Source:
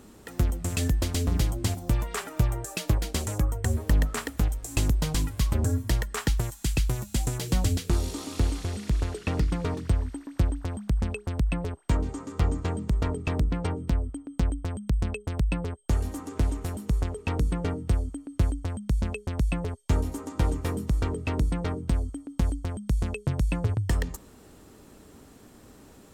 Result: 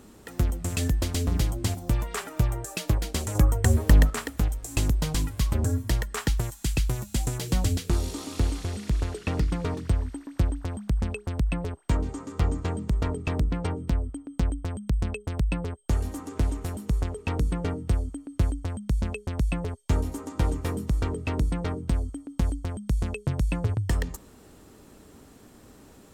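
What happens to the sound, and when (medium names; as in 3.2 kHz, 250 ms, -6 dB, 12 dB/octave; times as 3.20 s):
3.35–4.10 s: gain +5.5 dB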